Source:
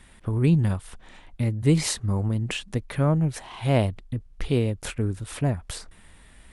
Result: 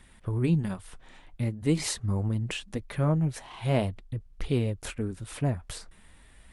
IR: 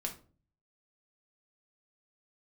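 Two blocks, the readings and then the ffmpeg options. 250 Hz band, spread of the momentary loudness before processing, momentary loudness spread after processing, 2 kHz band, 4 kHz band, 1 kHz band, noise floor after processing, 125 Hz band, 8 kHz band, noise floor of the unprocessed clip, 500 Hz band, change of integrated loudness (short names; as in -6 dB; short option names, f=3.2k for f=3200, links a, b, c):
-4.0 dB, 11 LU, 11 LU, -4.0 dB, -4.0 dB, -4.0 dB, -55 dBFS, -5.0 dB, -4.0 dB, -51 dBFS, -4.0 dB, -4.5 dB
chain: -af "flanger=delay=0:depth=7.9:regen=-58:speed=0.45:shape=triangular"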